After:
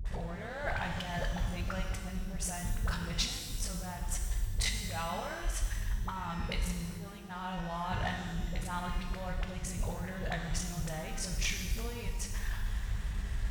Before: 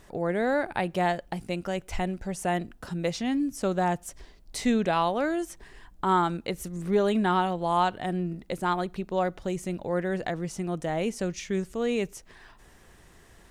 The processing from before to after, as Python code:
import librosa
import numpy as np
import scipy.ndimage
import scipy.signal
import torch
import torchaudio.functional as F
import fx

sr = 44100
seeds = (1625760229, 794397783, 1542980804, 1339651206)

y = fx.riaa(x, sr, side='playback')
y = fx.over_compress(y, sr, threshold_db=-31.0, ratio=-1.0)
y = fx.tone_stack(y, sr, knobs='10-0-10')
y = fx.leveller(y, sr, passes=2)
y = scipy.signal.sosfilt(scipy.signal.butter(2, 42.0, 'highpass', fs=sr, output='sos'), y)
y = fx.dispersion(y, sr, late='highs', ms=58.0, hz=510.0)
y = fx.rev_shimmer(y, sr, seeds[0], rt60_s=1.4, semitones=12, shimmer_db=-8, drr_db=2.5)